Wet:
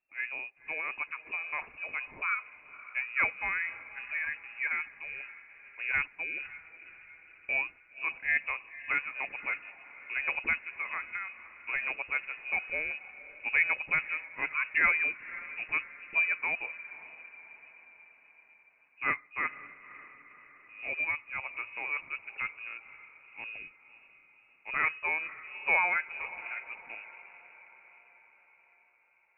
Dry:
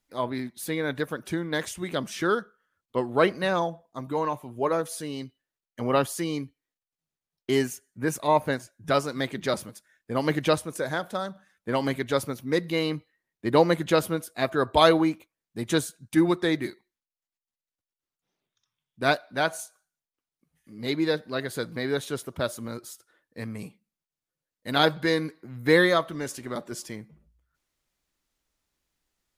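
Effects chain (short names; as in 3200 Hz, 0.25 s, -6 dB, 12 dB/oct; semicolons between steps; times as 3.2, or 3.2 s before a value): diffused feedback echo 0.538 s, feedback 54%, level -16 dB; inverted band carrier 2700 Hz; gain -7.5 dB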